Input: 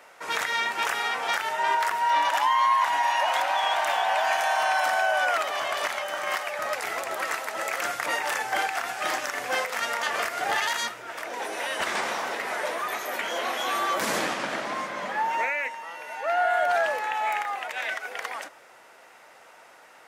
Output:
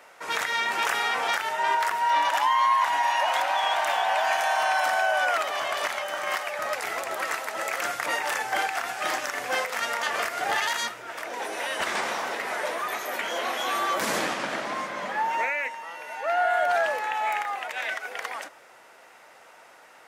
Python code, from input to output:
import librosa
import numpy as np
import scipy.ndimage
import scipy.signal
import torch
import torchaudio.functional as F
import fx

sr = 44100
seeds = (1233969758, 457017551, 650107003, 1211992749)

y = fx.env_flatten(x, sr, amount_pct=50, at=(0.68, 1.35))